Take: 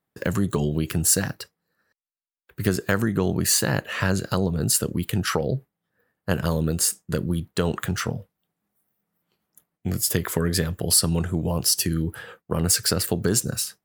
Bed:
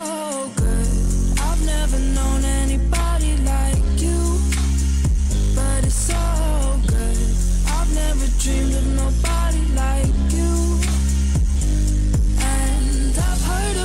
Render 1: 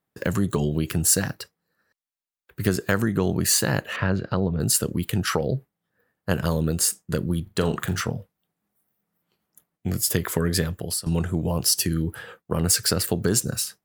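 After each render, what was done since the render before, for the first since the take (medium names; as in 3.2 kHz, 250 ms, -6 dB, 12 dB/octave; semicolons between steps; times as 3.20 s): 3.96–4.60 s: distance through air 300 m; 7.42–8.01 s: flutter echo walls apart 7.2 m, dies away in 0.23 s; 10.65–11.06 s: fade out linear, to -18.5 dB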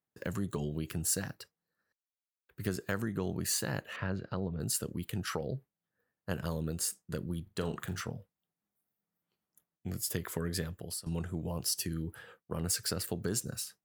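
trim -12 dB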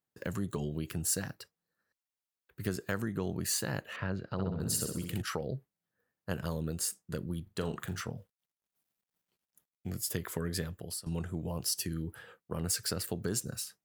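4.32–5.22 s: flutter echo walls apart 11 m, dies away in 0.74 s; 8.17–9.90 s: companded quantiser 8-bit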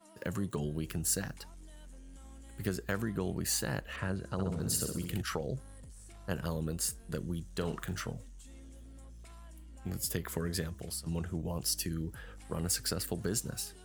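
add bed -33 dB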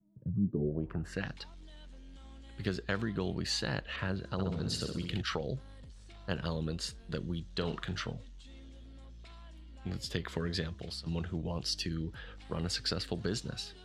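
low-pass sweep 140 Hz -> 3.9 kHz, 0.32–1.31 s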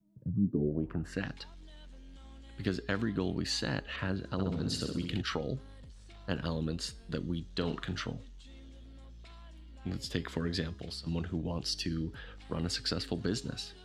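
de-hum 412 Hz, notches 28; dynamic bell 270 Hz, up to +8 dB, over -55 dBFS, Q 3.7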